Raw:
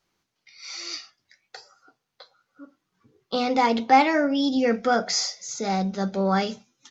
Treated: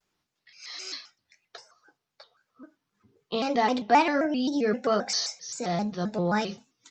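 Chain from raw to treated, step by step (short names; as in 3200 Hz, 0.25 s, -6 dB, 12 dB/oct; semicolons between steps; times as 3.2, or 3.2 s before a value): 4.25–4.88 notch comb 1100 Hz; shaped vibrato square 3.8 Hz, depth 160 cents; gain -3.5 dB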